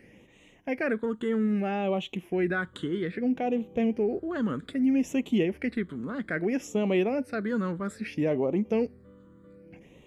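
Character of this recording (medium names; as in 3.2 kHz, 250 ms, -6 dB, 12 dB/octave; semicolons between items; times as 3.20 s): phasing stages 8, 0.62 Hz, lowest notch 720–1500 Hz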